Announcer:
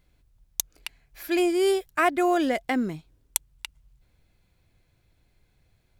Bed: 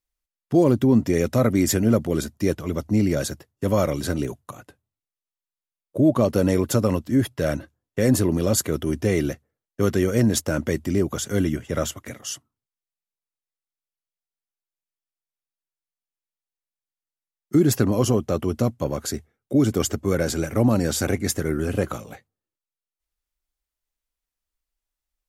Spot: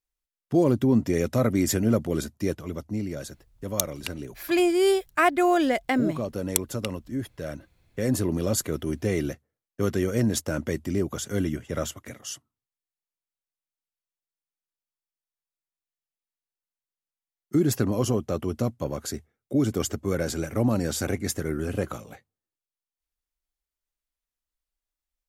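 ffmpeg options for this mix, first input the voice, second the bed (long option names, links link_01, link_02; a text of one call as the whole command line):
ffmpeg -i stem1.wav -i stem2.wav -filter_complex "[0:a]adelay=3200,volume=1.5dB[link_01];[1:a]volume=3dB,afade=type=out:start_time=2.26:duration=0.79:silence=0.421697,afade=type=in:start_time=7.64:duration=0.7:silence=0.473151[link_02];[link_01][link_02]amix=inputs=2:normalize=0" out.wav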